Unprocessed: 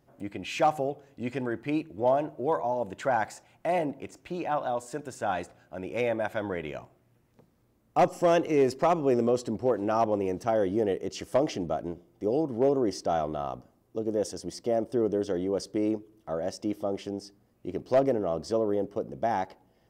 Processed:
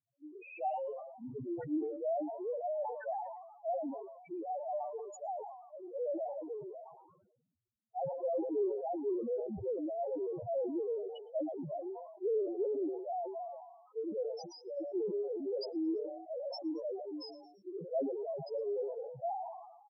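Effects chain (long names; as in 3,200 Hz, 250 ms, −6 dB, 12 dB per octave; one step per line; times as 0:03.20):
0:11.82–0:12.65: three sine waves on the formant tracks
convolution reverb RT60 2.0 s, pre-delay 24 ms, DRR 14 dB
0:14.30–0:14.78: downward compressor 4 to 1, threshold −34 dBFS, peak gain reduction 10 dB
dynamic equaliser 240 Hz, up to −7 dB, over −49 dBFS, Q 6.9
brickwall limiter −20 dBFS, peak gain reduction 6 dB
noise reduction from a noise print of the clip's start 20 dB
spectral peaks only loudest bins 1
echo with shifted repeats 113 ms, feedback 42%, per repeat +140 Hz, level −24 dB
level that may fall only so fast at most 53 dB per second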